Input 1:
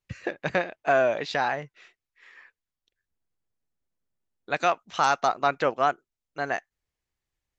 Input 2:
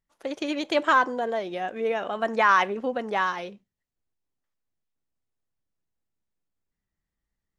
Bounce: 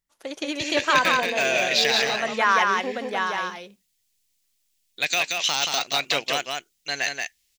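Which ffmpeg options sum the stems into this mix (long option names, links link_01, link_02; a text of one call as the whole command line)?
ffmpeg -i stem1.wav -i stem2.wav -filter_complex "[0:a]deesser=0.95,aexciter=amount=5.8:drive=10:freq=2000,adelay=500,volume=-5.5dB,asplit=2[link_01][link_02];[link_02]volume=-4dB[link_03];[1:a]highshelf=frequency=2400:gain=10.5,volume=-3dB,asplit=2[link_04][link_05];[link_05]volume=-3dB[link_06];[link_03][link_06]amix=inputs=2:normalize=0,aecho=0:1:179:1[link_07];[link_01][link_04][link_07]amix=inputs=3:normalize=0" out.wav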